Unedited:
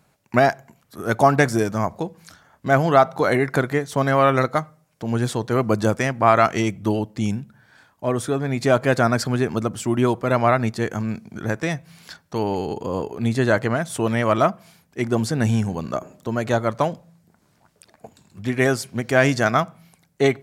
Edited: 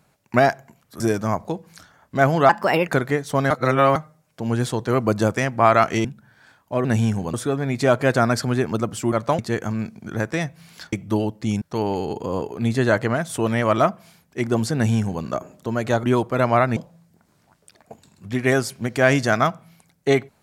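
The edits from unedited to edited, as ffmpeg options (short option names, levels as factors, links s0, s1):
-filter_complex "[0:a]asplit=15[s0][s1][s2][s3][s4][s5][s6][s7][s8][s9][s10][s11][s12][s13][s14];[s0]atrim=end=1.002[s15];[s1]atrim=start=1.508:end=3.004[s16];[s2]atrim=start=3:end=3.51,asetpts=PTS-STARTPTS,asetrate=56889,aresample=44100[s17];[s3]atrim=start=3.506:end=4.132[s18];[s4]atrim=start=4.128:end=4.582,asetpts=PTS-STARTPTS,areverse[s19];[s5]atrim=start=4.578:end=6.672[s20];[s6]atrim=start=7.358:end=8.162[s21];[s7]atrim=start=15.348:end=15.842[s22];[s8]atrim=start=8.158:end=9.952[s23];[s9]atrim=start=16.638:end=16.902[s24];[s10]atrim=start=10.678:end=12.222[s25];[s11]atrim=start=6.668:end=7.362[s26];[s12]atrim=start=12.218:end=16.642[s27];[s13]atrim=start=9.948:end=10.682[s28];[s14]atrim=start=16.898[s29];[s15][s16]acrossfade=d=0.004:c1=hsin:c2=hsin[s30];[s30][s17]acrossfade=d=0.004:c1=hsin:c2=hsin[s31];[s31][s18]acrossfade=d=0.004:c1=hsin:c2=hsin[s32];[s32][s19]acrossfade=d=0.004:c1=hsin:c2=hsin[s33];[s33][s20]acrossfade=d=0.004:c1=hsin:c2=hsin[s34];[s34][s21]acrossfade=d=0.004:c1=hsin:c2=hsin[s35];[s35][s22]acrossfade=d=0.004:c1=hsin:c2=hsin[s36];[s36][s23]acrossfade=d=0.004:c1=hsin:c2=hsin[s37];[s37][s24]acrossfade=d=0.004:c1=hsin:c2=hsin[s38];[s38][s25]acrossfade=d=0.004:c1=hsin:c2=hsin[s39];[s39][s26]acrossfade=d=0.004:c1=hsin:c2=hsin[s40];[s40][s27]acrossfade=d=0.004:c1=hsin:c2=hsin[s41];[s41][s28]acrossfade=d=0.004:c1=hsin:c2=hsin[s42];[s42][s29]acrossfade=d=0.004:c1=hsin:c2=hsin"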